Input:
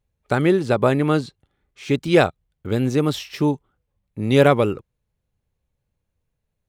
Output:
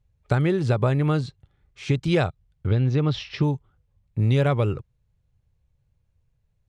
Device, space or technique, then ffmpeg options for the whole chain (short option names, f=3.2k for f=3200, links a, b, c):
jukebox: -filter_complex "[0:a]asettb=1/sr,asplit=3[a][b][c];[a]atrim=end=2.674[d];[b]atrim=start=2.67:end=3.43,asetpts=PTS-STARTPTS,afade=t=in:d=0.004:c=qsin,afade=t=out:st=0.756:d=0.004:c=qsin,lowpass=f=5k:w=0.5412,lowpass=f=5k:w=1.3066[e];[c]atrim=start=3.426[f];[d][e]acrossfade=d=0.004:c1=hsin:c2=qsin[g];[g][f]acrossfade=d=0.004:c1=qsin:c2=hsin,lowpass=7.8k,lowshelf=f=170:t=q:w=1.5:g=8,acompressor=threshold=-18dB:ratio=4"